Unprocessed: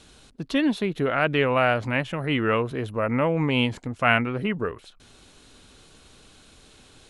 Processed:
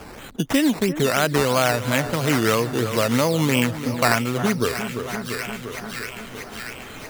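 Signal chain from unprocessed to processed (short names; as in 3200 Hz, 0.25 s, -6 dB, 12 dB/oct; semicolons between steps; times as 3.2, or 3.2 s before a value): decimation with a swept rate 11×, swing 60% 3 Hz; spectral noise reduction 10 dB; on a send: split-band echo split 1700 Hz, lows 0.345 s, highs 0.637 s, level -13.5 dB; on the sum: three-band squash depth 70%; gain +3 dB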